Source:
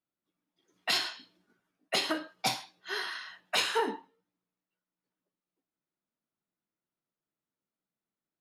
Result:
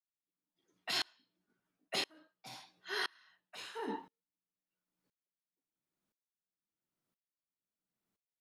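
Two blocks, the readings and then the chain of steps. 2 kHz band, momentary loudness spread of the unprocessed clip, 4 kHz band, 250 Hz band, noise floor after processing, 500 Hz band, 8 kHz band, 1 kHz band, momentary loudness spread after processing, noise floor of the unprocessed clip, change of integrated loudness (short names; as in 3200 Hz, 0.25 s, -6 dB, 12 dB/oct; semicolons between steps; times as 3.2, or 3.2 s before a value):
-8.0 dB, 10 LU, -8.0 dB, -8.0 dB, under -85 dBFS, -10.0 dB, -10.5 dB, -10.5 dB, 16 LU, under -85 dBFS, -7.5 dB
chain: low shelf 240 Hz +4.5 dB; reverse; compressor 6:1, threshold -36 dBFS, peak gain reduction 12.5 dB; reverse; dB-ramp tremolo swelling 0.98 Hz, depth 32 dB; gain +5 dB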